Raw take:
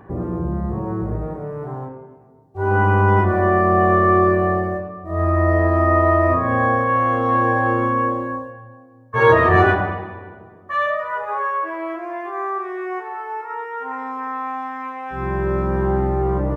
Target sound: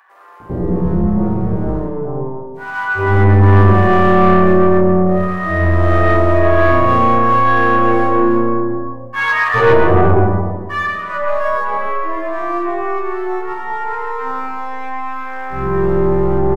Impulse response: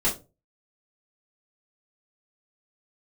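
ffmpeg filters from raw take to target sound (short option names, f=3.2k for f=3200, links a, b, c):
-filter_complex "[0:a]aeval=exprs='if(lt(val(0),0),0.708*val(0),val(0))':c=same,acrossover=split=1100[a][b];[a]adelay=400[c];[c][b]amix=inputs=2:normalize=0,asplit=2[d][e];[1:a]atrim=start_sample=2205,lowpass=2.3k,adelay=109[f];[e][f]afir=irnorm=-1:irlink=0,volume=-12.5dB[g];[d][g]amix=inputs=2:normalize=0,acontrast=80,volume=-1dB"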